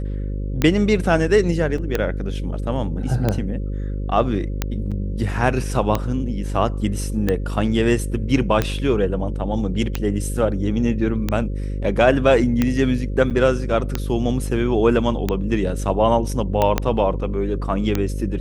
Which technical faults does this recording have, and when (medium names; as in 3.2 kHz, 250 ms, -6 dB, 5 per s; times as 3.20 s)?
buzz 50 Hz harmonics 11 -25 dBFS
tick 45 rpm -6 dBFS
1.78 s: dropout 3.4 ms
4.91–4.92 s: dropout 6.5 ms
13.30–13.31 s: dropout 7.7 ms
16.78 s: pop -4 dBFS